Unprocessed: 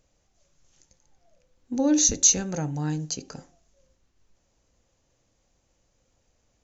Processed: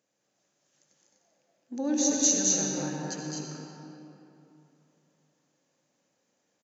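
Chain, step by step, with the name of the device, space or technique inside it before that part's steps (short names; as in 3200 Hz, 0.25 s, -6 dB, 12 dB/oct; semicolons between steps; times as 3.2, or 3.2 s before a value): stadium PA (HPF 170 Hz 24 dB/oct; bell 1700 Hz +5 dB 0.23 oct; loudspeakers at several distances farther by 73 m -3 dB, 85 m -3 dB; reverb RT60 3.0 s, pre-delay 65 ms, DRR 1 dB); gain -8 dB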